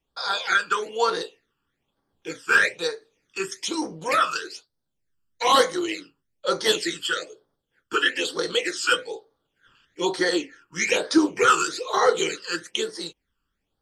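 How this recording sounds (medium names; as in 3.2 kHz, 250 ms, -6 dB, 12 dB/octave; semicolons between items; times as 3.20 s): phasing stages 12, 1.1 Hz, lowest notch 650–2600 Hz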